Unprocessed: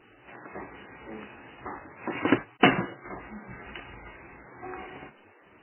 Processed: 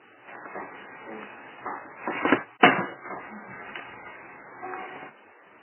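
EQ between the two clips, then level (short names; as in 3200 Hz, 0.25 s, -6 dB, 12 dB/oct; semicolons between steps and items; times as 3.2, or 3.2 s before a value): BPF 120–2500 Hz; low shelf 240 Hz -11.5 dB; bell 340 Hz -2.5 dB; +6.0 dB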